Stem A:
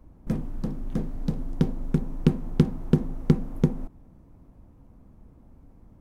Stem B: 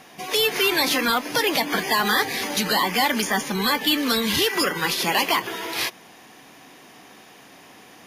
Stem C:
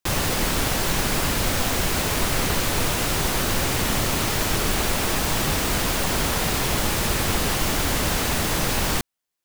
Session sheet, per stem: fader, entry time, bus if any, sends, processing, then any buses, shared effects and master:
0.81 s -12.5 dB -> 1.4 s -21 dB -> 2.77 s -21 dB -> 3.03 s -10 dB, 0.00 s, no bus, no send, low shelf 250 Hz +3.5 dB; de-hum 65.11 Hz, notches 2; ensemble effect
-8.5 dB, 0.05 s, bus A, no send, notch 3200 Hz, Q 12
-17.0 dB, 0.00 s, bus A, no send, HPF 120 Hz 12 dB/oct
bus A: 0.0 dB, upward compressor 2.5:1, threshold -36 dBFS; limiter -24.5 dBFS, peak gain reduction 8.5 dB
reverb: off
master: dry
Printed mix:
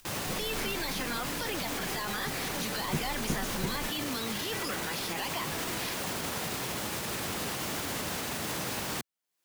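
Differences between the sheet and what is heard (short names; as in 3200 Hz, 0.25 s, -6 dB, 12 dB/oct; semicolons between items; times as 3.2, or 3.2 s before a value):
stem B: missing notch 3200 Hz, Q 12; stem C -17.0 dB -> -8.5 dB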